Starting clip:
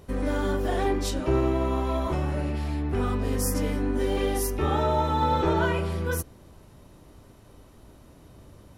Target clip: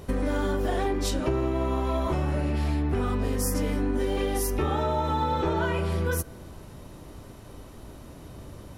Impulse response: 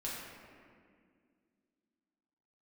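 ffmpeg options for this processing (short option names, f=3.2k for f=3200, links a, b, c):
-filter_complex "[0:a]acompressor=threshold=-30dB:ratio=6,asplit=2[a][b];[1:a]atrim=start_sample=2205[c];[b][c]afir=irnorm=-1:irlink=0,volume=-23dB[d];[a][d]amix=inputs=2:normalize=0,volume=6.5dB"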